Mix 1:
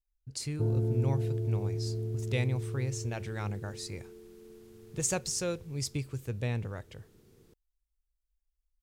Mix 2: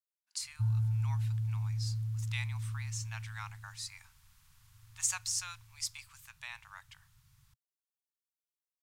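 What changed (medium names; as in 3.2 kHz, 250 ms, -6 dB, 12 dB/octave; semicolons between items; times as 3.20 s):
speech: add brick-wall FIR high-pass 250 Hz; master: add elliptic band-stop 130–990 Hz, stop band 50 dB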